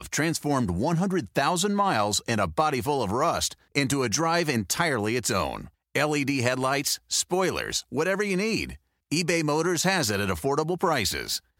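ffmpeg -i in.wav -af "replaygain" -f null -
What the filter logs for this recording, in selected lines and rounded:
track_gain = +7.2 dB
track_peak = 0.317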